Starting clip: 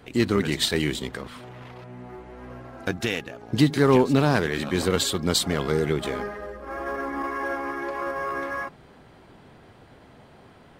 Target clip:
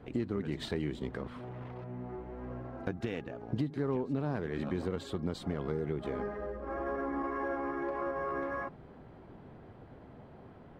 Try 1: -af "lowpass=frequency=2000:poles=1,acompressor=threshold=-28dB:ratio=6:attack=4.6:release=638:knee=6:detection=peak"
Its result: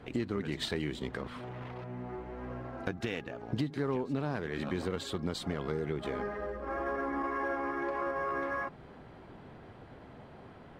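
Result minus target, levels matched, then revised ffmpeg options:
2,000 Hz band +4.0 dB
-af "lowpass=frequency=710:poles=1,acompressor=threshold=-28dB:ratio=6:attack=4.6:release=638:knee=6:detection=peak"

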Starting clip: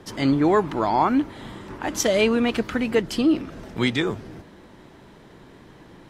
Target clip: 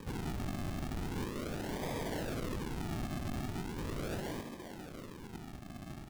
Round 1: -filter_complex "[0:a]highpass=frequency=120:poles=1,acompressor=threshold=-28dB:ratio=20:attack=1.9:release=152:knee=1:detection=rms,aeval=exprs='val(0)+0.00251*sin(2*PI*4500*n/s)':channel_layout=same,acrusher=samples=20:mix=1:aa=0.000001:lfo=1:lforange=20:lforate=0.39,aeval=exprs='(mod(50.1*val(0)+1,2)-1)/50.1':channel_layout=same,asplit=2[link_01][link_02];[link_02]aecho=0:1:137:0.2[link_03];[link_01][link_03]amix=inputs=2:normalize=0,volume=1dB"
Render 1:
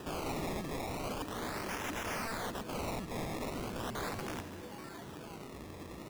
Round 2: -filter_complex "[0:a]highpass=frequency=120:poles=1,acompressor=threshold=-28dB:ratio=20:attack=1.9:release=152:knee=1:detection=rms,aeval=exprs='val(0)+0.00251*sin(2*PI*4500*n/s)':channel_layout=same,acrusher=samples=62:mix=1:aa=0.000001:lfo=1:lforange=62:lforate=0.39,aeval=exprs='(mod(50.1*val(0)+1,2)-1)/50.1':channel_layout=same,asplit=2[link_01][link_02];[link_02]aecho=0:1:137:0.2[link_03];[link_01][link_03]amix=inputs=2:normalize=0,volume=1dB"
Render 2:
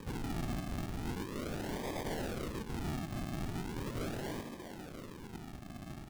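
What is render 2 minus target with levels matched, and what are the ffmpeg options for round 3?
downward compressor: peak gain reduction +9.5 dB
-filter_complex "[0:a]highpass=frequency=120:poles=1,acompressor=threshold=-18dB:ratio=20:attack=1.9:release=152:knee=1:detection=rms,aeval=exprs='val(0)+0.00251*sin(2*PI*4500*n/s)':channel_layout=same,acrusher=samples=62:mix=1:aa=0.000001:lfo=1:lforange=62:lforate=0.39,aeval=exprs='(mod(50.1*val(0)+1,2)-1)/50.1':channel_layout=same,asplit=2[link_01][link_02];[link_02]aecho=0:1:137:0.2[link_03];[link_01][link_03]amix=inputs=2:normalize=0,volume=1dB"

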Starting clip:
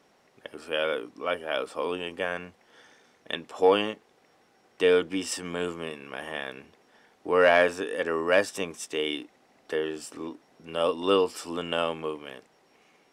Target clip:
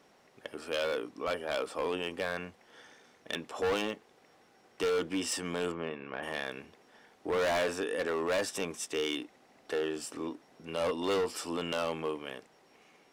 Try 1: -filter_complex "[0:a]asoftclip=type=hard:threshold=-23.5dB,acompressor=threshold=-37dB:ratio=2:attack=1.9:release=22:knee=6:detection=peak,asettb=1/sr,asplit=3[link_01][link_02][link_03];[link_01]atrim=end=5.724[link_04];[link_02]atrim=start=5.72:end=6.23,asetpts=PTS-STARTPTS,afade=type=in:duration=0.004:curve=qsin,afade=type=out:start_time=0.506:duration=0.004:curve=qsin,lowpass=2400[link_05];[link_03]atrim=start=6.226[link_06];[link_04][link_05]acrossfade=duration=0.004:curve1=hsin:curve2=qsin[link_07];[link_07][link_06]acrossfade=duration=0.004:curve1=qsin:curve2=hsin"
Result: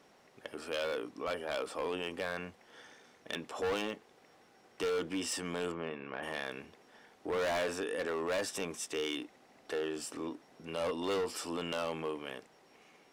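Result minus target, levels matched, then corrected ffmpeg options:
downward compressor: peak gain reduction +3.5 dB
-filter_complex "[0:a]asoftclip=type=hard:threshold=-23.5dB,acompressor=threshold=-30dB:ratio=2:attack=1.9:release=22:knee=6:detection=peak,asettb=1/sr,asplit=3[link_01][link_02][link_03];[link_01]atrim=end=5.724[link_04];[link_02]atrim=start=5.72:end=6.23,asetpts=PTS-STARTPTS,afade=type=in:duration=0.004:curve=qsin,afade=type=out:start_time=0.506:duration=0.004:curve=qsin,lowpass=2400[link_05];[link_03]atrim=start=6.226[link_06];[link_04][link_05]acrossfade=duration=0.004:curve1=hsin:curve2=qsin[link_07];[link_07][link_06]acrossfade=duration=0.004:curve1=qsin:curve2=hsin"

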